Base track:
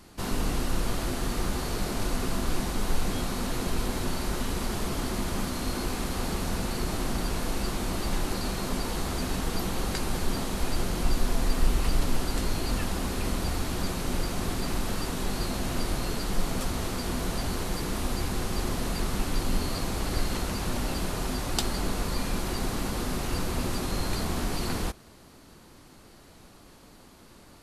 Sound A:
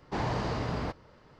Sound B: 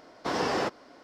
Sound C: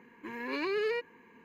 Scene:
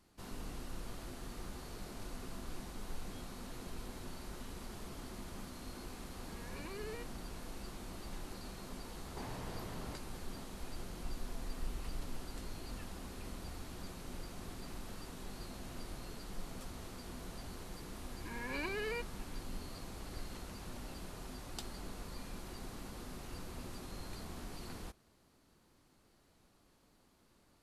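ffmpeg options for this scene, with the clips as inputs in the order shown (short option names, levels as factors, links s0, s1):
-filter_complex "[3:a]asplit=2[s0][s1];[0:a]volume=0.141[s2];[1:a]acompressor=threshold=0.0126:ratio=6:attack=3.2:release=140:knee=1:detection=peak[s3];[s1]aecho=1:1:1.3:0.47[s4];[s0]atrim=end=1.44,asetpts=PTS-STARTPTS,volume=0.168,afade=t=in:d=0.004:c=hsin,afade=t=out:st=1.436:d=0.004:c=hsin,adelay=6030[s5];[s3]atrim=end=1.39,asetpts=PTS-STARTPTS,volume=0.531,afade=t=in:d=0.004:c=hsin,afade=t=out:st=1.386:d=0.004:c=hsin,adelay=9050[s6];[s4]atrim=end=1.44,asetpts=PTS-STARTPTS,volume=0.531,afade=t=in:d=0.004:c=hsin,afade=t=out:st=1.436:d=0.004:c=hsin,adelay=18010[s7];[s2][s5][s6][s7]amix=inputs=4:normalize=0"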